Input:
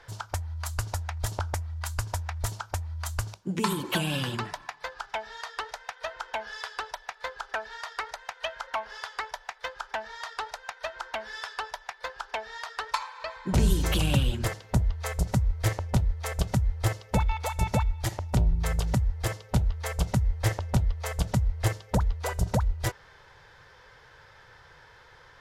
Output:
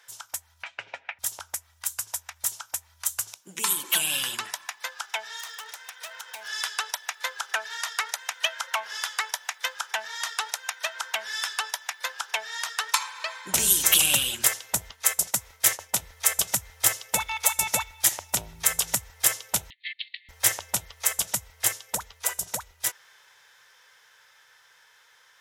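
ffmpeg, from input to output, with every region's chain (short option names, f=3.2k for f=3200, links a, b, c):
-filter_complex "[0:a]asettb=1/sr,asplit=3[a][b][c];[a]atrim=end=0.634[d];[b]atrim=start=0.63:end=1.19,asetpts=PTS-STARTPTS,afade=t=in:d=0.004:c=qsin,afade=t=out:st=0.556:d=0.004:c=qsin,aecho=1:1:7.3:0.38,atrim=end_sample=24696,acontrast=64,highpass=f=150:w=0.5412,highpass=f=150:w=1.3066,equalizer=f=230:t=q:w=4:g=-4,equalizer=f=530:t=q:w=4:g=6,equalizer=f=1.1k:t=q:w=4:g=-9,equalizer=f=2.4k:t=q:w=4:g=8,lowpass=f=2.8k:w=0.5412,lowpass=f=2.8k:w=1.3066[e];[c]atrim=start=1.186[f];[d][e]acrossfade=d=0.004:c1=hsin:c2=qsin[g];[g][f]acrossfade=d=0.004:c1=qsin:c2=hsin,asettb=1/sr,asplit=3[h][i][j];[h]atrim=end=5.394[k];[i]atrim=start=5.39:end=6.48,asetpts=PTS-STARTPTS,afade=t=in:d=0.004:c=qsin,afade=t=out:st=1.086:d=0.004:c=qsin,acompressor=threshold=-38dB:ratio=2.5:attack=3.2:release=140:knee=1:detection=peak,asoftclip=type=hard:threshold=-39dB[l];[j]atrim=start=6.476[m];[k][l]acrossfade=d=0.004:c1=hsin:c2=qsin[n];[n][m]acrossfade=d=0.004:c1=qsin:c2=hsin,asettb=1/sr,asplit=3[o][p][q];[o]atrim=end=14.914[r];[p]atrim=start=14.91:end=16,asetpts=PTS-STARTPTS,afade=t=in:d=0.004:c=qsin,afade=t=out:st=1.086:d=0.004:c=qsin,agate=range=-33dB:threshold=-32dB:ratio=3:release=100:detection=peak,lowshelf=f=120:g=-8[s];[q]atrim=start=15.996[t];[r][s]acrossfade=d=0.004:c1=hsin:c2=qsin[u];[u][t]acrossfade=d=0.004:c1=qsin:c2=hsin,asettb=1/sr,asplit=3[v][w][x];[v]atrim=end=19.704[y];[w]atrim=start=19.7:end=20.29,asetpts=PTS-STARTPTS,afade=t=in:d=0.004:c=qsin,afade=t=out:st=0.586:d=0.004:c=qsin,agate=range=-14dB:threshold=-33dB:ratio=16:release=100:detection=peak,asuperpass=centerf=2800:order=20:qfactor=1.1[z];[x]atrim=start=20.286[aa];[y][z]acrossfade=d=0.004:c1=hsin:c2=qsin[ab];[ab][aa]acrossfade=d=0.004:c1=qsin:c2=hsin,equalizer=f=4.5k:w=3.8:g=-7.5,dynaudnorm=f=510:g=17:m=11.5dB,aderivative,volume=8.5dB"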